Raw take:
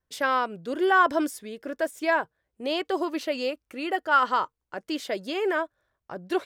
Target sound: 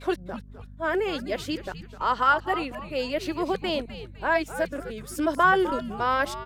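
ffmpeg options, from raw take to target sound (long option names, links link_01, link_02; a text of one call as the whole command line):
ffmpeg -i in.wav -filter_complex "[0:a]areverse,aeval=exprs='val(0)+0.00631*(sin(2*PI*50*n/s)+sin(2*PI*2*50*n/s)/2+sin(2*PI*3*50*n/s)/3+sin(2*PI*4*50*n/s)/4+sin(2*PI*5*50*n/s)/5)':channel_layout=same,asplit=5[link_01][link_02][link_03][link_04][link_05];[link_02]adelay=254,afreqshift=-140,volume=-12.5dB[link_06];[link_03]adelay=508,afreqshift=-280,volume=-20.9dB[link_07];[link_04]adelay=762,afreqshift=-420,volume=-29.3dB[link_08];[link_05]adelay=1016,afreqshift=-560,volume=-37.7dB[link_09];[link_01][link_06][link_07][link_08][link_09]amix=inputs=5:normalize=0" out.wav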